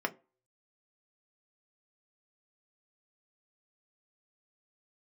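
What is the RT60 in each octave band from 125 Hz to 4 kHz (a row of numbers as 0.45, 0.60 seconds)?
0.25, 0.30, 0.35, 0.30, 0.25, 0.15 seconds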